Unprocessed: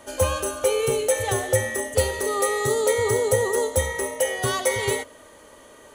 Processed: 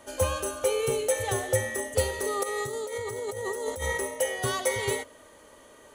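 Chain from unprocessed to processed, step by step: 2.43–3.98 s: compressor with a negative ratio -28 dBFS, ratio -1; trim -4.5 dB

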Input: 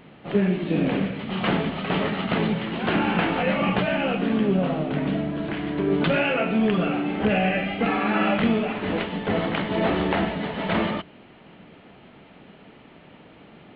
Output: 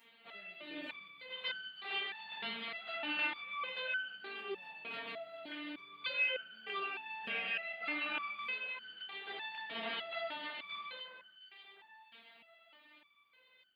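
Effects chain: differentiator; echo whose repeats swap between lows and highs 357 ms, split 1.9 kHz, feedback 61%, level -9.5 dB; resonator arpeggio 3.3 Hz 230–1500 Hz; trim +16 dB

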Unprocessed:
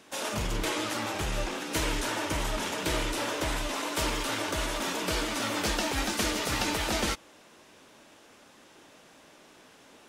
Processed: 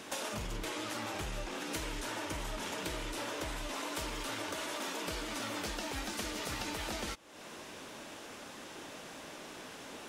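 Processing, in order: 4.53–5.08 s: high-pass 220 Hz 12 dB/octave; compression 6:1, threshold -45 dBFS, peak gain reduction 19 dB; trim +7.5 dB

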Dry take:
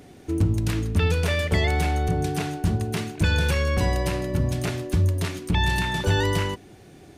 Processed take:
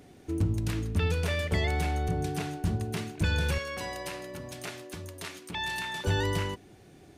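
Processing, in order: 3.58–6.05 s: high-pass 700 Hz 6 dB/octave; trim -6 dB

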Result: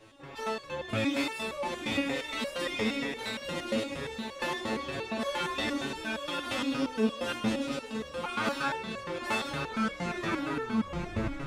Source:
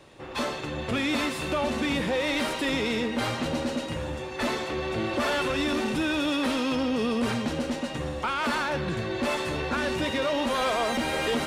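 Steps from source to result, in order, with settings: tape stop on the ending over 1.87 s; echo that smears into a reverb 1002 ms, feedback 45%, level -7.5 dB; resonator arpeggio 8.6 Hz 110–560 Hz; trim +7.5 dB

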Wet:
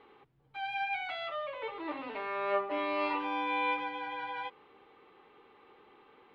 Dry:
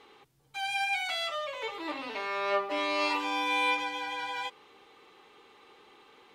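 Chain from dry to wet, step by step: distance through air 450 m

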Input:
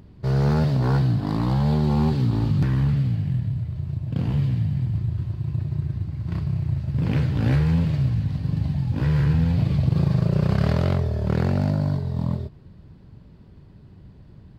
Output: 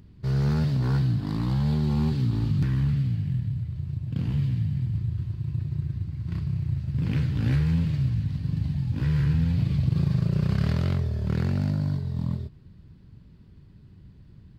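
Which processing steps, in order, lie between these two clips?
peaking EQ 660 Hz -9.5 dB 1.6 oct; trim -2.5 dB

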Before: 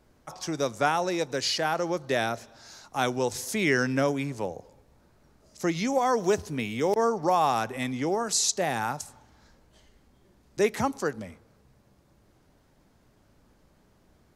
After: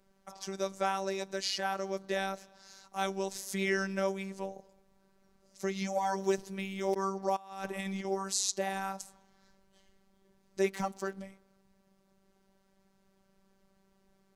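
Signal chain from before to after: 7.36–8.05 s: compressor with a negative ratio -31 dBFS, ratio -0.5; 10.65–11.17 s: hysteresis with a dead band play -47 dBFS; robot voice 193 Hz; trim -4.5 dB

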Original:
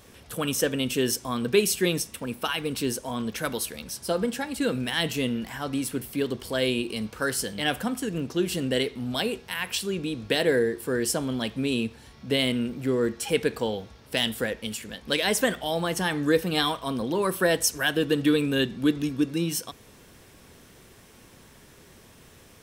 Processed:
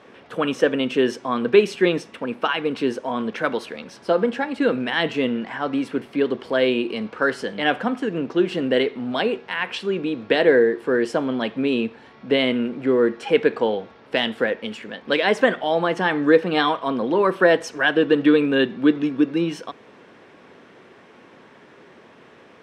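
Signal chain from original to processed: band-pass 260–2200 Hz; trim +8 dB

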